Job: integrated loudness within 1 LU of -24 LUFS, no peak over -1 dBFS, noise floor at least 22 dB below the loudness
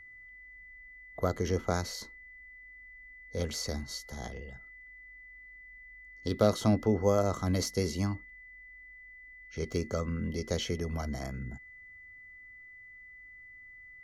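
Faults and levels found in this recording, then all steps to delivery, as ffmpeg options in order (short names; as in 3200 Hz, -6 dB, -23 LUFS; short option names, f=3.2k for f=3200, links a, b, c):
steady tone 2000 Hz; tone level -49 dBFS; loudness -32.5 LUFS; peak -12.0 dBFS; loudness target -24.0 LUFS
-> -af "bandreject=f=2k:w=30"
-af "volume=8.5dB"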